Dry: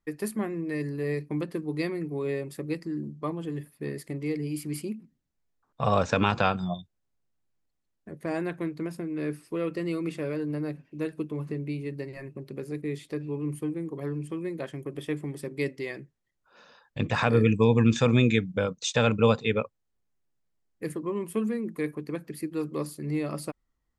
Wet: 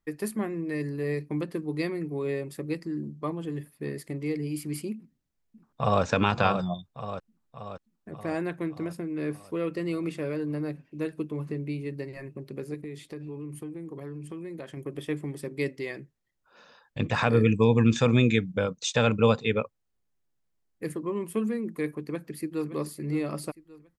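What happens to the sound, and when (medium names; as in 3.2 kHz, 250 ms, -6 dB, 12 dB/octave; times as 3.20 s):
4.96–6.03 s: echo throw 580 ms, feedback 60%, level -7.5 dB
12.74–14.77 s: compression 5:1, threshold -35 dBFS
22.04–22.70 s: echo throw 570 ms, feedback 40%, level -12 dB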